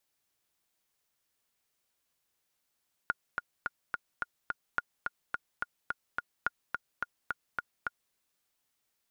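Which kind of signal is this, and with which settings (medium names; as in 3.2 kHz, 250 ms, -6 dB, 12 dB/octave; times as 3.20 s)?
metronome 214 bpm, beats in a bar 6, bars 3, 1.43 kHz, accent 4 dB -15 dBFS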